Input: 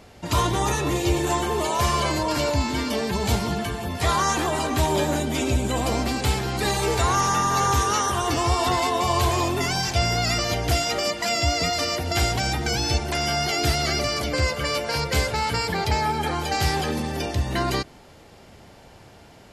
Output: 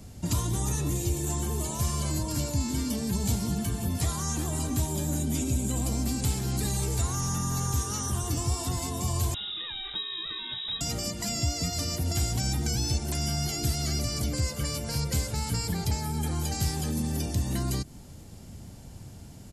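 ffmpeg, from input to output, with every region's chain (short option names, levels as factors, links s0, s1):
-filter_complex "[0:a]asettb=1/sr,asplit=3[s0][s1][s2];[s0]atrim=end=9.344[s3];[s1]atrim=start=9.34:end=10.81,asetpts=PTS-STARTPTS,afade=t=in:d=0.004:c=qsin,afade=t=out:st=1.466:d=0.004:c=qsin,equalizer=f=880:t=o:w=1.7:g=-6,lowpass=f=3300:t=q:w=0.5098,lowpass=f=3300:t=q:w=0.6013,lowpass=f=3300:t=q:w=0.9,lowpass=f=3300:t=q:w=2.563,afreqshift=-3900[s4];[s2]atrim=start=10.806[s5];[s3][s4]acrossfade=d=0.004:c1=hsin:c2=qsin[s6];[s6][s5]acrossfade=d=0.004:c1=qsin:c2=hsin,equalizer=f=270:t=o:w=1.6:g=4.5,acrossover=split=200|7100[s7][s8][s9];[s7]acompressor=threshold=0.0178:ratio=4[s10];[s8]acompressor=threshold=0.0398:ratio=4[s11];[s9]acompressor=threshold=0.00708:ratio=4[s12];[s10][s11][s12]amix=inputs=3:normalize=0,firequalizer=gain_entry='entry(100,0);entry(390,-16);entry(2000,-17);entry(7400,-1)':delay=0.05:min_phase=1,volume=2.24"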